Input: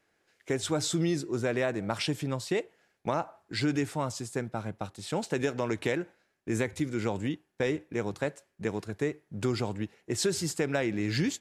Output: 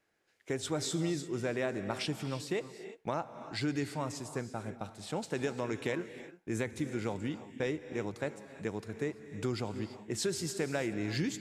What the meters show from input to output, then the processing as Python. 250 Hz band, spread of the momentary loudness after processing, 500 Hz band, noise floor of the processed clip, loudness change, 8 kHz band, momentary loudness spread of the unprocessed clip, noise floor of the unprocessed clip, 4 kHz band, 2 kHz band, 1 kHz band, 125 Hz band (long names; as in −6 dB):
−4.5 dB, 6 LU, −4.5 dB, −66 dBFS, −4.5 dB, −4.5 dB, 7 LU, −75 dBFS, −4.5 dB, −4.5 dB, −4.5 dB, −5.0 dB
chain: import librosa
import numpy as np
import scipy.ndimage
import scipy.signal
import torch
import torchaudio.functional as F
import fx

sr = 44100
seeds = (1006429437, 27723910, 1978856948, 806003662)

y = fx.rev_gated(x, sr, seeds[0], gate_ms=370, shape='rising', drr_db=10.5)
y = y * 10.0 ** (-5.0 / 20.0)